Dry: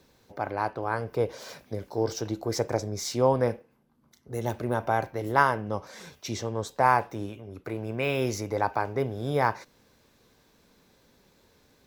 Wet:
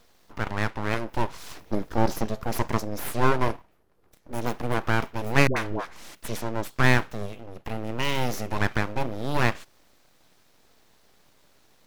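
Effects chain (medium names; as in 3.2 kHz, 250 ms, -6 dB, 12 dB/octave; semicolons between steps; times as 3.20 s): 1.50–2.26 s: bass shelf 270 Hz +9.5 dB; full-wave rectifier; 5.47–6.15 s: phase dispersion highs, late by 92 ms, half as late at 600 Hz; trim +3.5 dB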